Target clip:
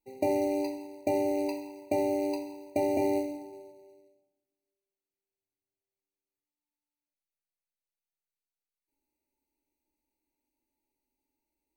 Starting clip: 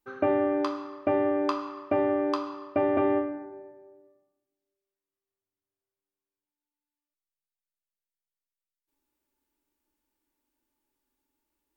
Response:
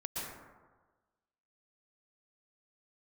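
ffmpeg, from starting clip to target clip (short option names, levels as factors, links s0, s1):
-af "acrusher=bits=4:mode=log:mix=0:aa=0.000001,afftfilt=real='re*eq(mod(floor(b*sr/1024/960),2),0)':imag='im*eq(mod(floor(b*sr/1024/960),2),0)':win_size=1024:overlap=0.75,volume=0.708"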